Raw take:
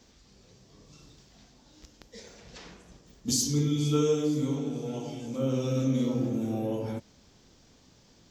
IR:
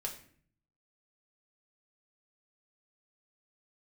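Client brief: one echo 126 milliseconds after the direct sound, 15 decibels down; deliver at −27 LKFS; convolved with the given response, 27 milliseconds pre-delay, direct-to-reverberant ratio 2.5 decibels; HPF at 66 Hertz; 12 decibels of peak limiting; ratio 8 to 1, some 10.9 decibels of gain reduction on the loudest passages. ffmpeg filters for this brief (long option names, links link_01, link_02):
-filter_complex "[0:a]highpass=66,acompressor=threshold=-33dB:ratio=8,alimiter=level_in=11.5dB:limit=-24dB:level=0:latency=1,volume=-11.5dB,aecho=1:1:126:0.178,asplit=2[link_01][link_02];[1:a]atrim=start_sample=2205,adelay=27[link_03];[link_02][link_03]afir=irnorm=-1:irlink=0,volume=-2.5dB[link_04];[link_01][link_04]amix=inputs=2:normalize=0,volume=15dB"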